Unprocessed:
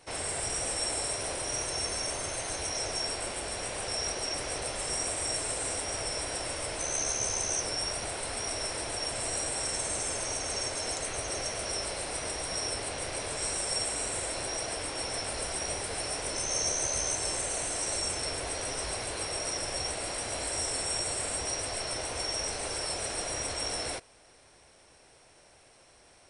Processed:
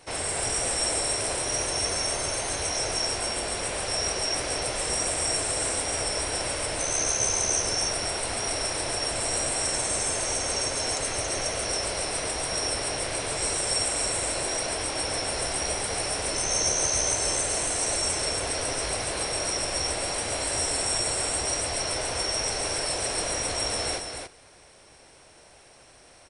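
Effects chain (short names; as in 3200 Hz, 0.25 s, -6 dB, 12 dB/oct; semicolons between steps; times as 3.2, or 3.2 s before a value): echo 0.278 s -6 dB; gain +4.5 dB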